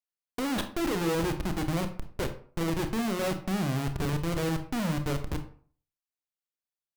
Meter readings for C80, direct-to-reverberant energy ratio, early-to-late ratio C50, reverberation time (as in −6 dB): 15.0 dB, 7.0 dB, 10.5 dB, 0.50 s